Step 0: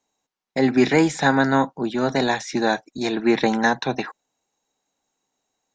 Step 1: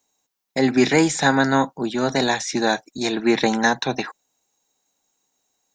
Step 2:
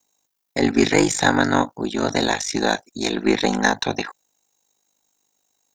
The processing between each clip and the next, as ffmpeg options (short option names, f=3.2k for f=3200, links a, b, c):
-af "aemphasis=mode=production:type=50kf"
-af "aeval=exprs='val(0)*sin(2*PI*25*n/s)':c=same,highshelf=f=6.8k:g=5,aeval=exprs='0.668*(cos(1*acos(clip(val(0)/0.668,-1,1)))-cos(1*PI/2))+0.0119*(cos(8*acos(clip(val(0)/0.668,-1,1)))-cos(8*PI/2))':c=same,volume=2.5dB"